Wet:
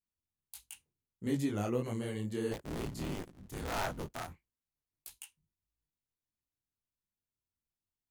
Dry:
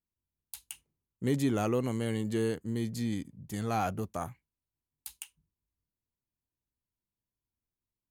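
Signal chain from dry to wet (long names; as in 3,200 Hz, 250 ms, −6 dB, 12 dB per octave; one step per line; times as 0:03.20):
0:02.51–0:05.13: sub-harmonics by changed cycles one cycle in 3, inverted
micro pitch shift up and down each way 54 cents
level −1.5 dB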